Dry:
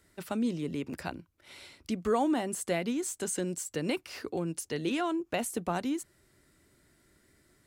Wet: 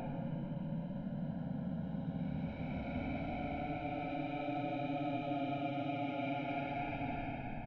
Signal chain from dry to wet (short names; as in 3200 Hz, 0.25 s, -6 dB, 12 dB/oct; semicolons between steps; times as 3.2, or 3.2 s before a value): minimum comb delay 0.8 ms; Bessel low-pass 2100 Hz, order 4; low shelf 120 Hz -8.5 dB; notch 1100 Hz, Q 17; comb 1.3 ms, depth 100%; limiter -30 dBFS, peak gain reduction 9.5 dB; Paulstretch 49×, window 0.05 s, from 0.68